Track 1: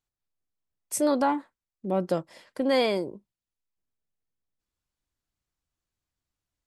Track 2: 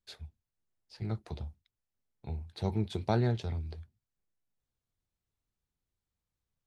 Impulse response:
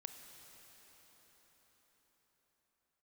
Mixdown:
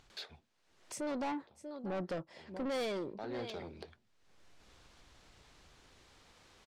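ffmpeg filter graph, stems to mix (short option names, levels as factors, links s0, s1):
-filter_complex "[0:a]dynaudnorm=f=200:g=11:m=3.16,volume=0.2,asplit=3[s0][s1][s2];[s1]volume=0.141[s3];[1:a]highpass=340,adelay=100,volume=1.26[s4];[s2]apad=whole_len=298133[s5];[s4][s5]sidechaincompress=threshold=0.00158:ratio=6:attack=11:release=248[s6];[s3]aecho=0:1:639:1[s7];[s0][s6][s7]amix=inputs=3:normalize=0,lowpass=5200,acompressor=mode=upward:threshold=0.0126:ratio=2.5,asoftclip=type=tanh:threshold=0.0211"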